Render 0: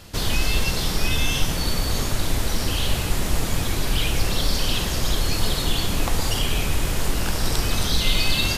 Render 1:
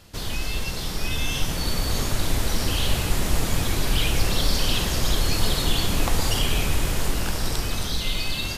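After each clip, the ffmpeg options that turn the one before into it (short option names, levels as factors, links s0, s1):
-af "dynaudnorm=f=320:g=9:m=3.76,volume=0.473"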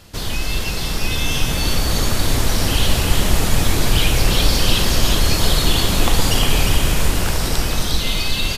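-af "aecho=1:1:354:0.531,volume=1.88"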